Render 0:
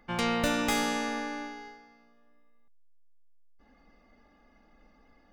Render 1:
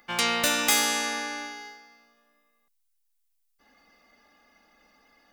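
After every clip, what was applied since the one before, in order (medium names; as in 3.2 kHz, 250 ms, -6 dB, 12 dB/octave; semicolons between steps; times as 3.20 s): tilt EQ +3.5 dB/octave; trim +2.5 dB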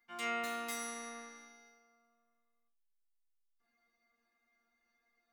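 chord resonator A#3 fifth, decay 0.25 s; trim -5 dB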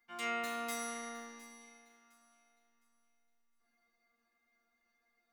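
echo whose repeats swap between lows and highs 355 ms, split 1.5 kHz, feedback 54%, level -12 dB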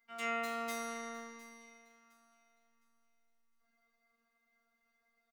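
delay 255 ms -23.5 dB; robot voice 231 Hz; trim +1 dB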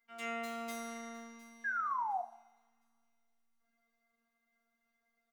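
painted sound fall, 1.64–2.22 s, 690–1700 Hz -33 dBFS; two-slope reverb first 0.66 s, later 2.2 s, from -27 dB, DRR 8 dB; trim -3 dB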